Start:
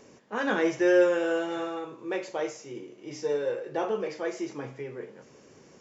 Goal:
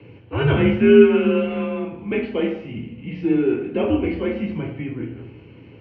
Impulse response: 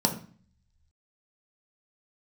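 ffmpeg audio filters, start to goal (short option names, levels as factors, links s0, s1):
-filter_complex "[0:a]highpass=f=210:t=q:w=0.5412,highpass=f=210:t=q:w=1.307,lowpass=f=3100:t=q:w=0.5176,lowpass=f=3100:t=q:w=0.7071,lowpass=f=3100:t=q:w=1.932,afreqshift=-130[s0];[1:a]atrim=start_sample=2205,asetrate=23814,aresample=44100[s1];[s0][s1]afir=irnorm=-1:irlink=0,crystalizer=i=3.5:c=0,volume=0.335"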